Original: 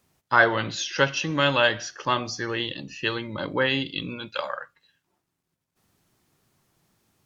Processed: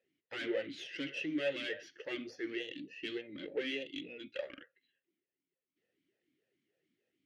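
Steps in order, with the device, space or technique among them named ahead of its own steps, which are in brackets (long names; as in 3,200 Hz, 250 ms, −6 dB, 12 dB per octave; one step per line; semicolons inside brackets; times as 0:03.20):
talk box (tube saturation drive 24 dB, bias 0.75; formant filter swept between two vowels e-i 3.4 Hz)
level +4.5 dB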